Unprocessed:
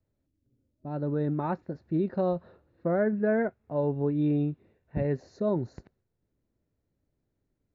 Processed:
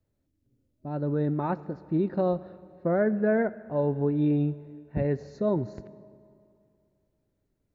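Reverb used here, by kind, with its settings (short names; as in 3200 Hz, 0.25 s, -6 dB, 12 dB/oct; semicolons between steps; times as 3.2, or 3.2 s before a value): digital reverb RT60 2.5 s, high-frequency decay 0.75×, pre-delay 20 ms, DRR 17.5 dB; gain +1.5 dB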